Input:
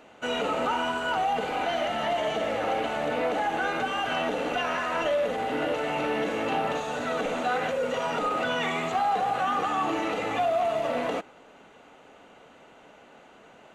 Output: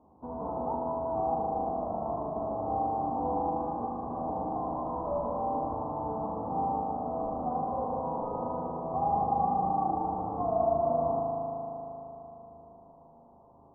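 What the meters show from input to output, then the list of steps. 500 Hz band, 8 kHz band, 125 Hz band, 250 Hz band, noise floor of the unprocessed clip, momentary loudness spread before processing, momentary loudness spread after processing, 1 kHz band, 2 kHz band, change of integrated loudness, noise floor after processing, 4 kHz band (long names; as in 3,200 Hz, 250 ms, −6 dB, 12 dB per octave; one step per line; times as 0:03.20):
−4.0 dB, below −35 dB, +2.5 dB, −2.5 dB, −53 dBFS, 3 LU, 9 LU, −2.0 dB, below −35 dB, −4.0 dB, −57 dBFS, below −40 dB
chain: spectral envelope flattened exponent 0.3
Chebyshev low-pass with heavy ripple 1,100 Hz, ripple 3 dB
parametric band 75 Hz +13 dB 0.61 octaves
spring reverb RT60 3.8 s, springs 38 ms, chirp 75 ms, DRR −2 dB
level −3.5 dB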